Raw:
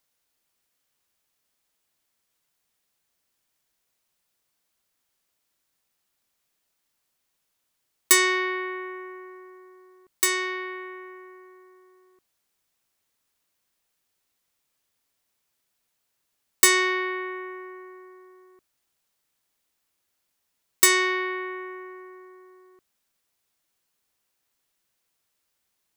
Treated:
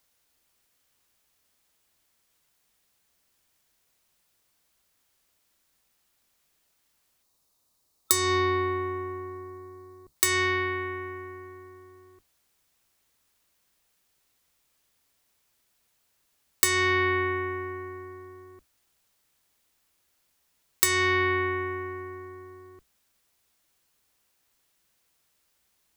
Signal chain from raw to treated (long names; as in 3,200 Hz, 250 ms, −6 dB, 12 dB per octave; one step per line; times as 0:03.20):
sub-octave generator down 2 octaves, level −2 dB
gain on a spectral selection 0:07.23–0:10.16, 1,300–3,600 Hz −8 dB
downward compressor 16 to 1, threshold −24 dBFS, peak gain reduction 13.5 dB
level +5 dB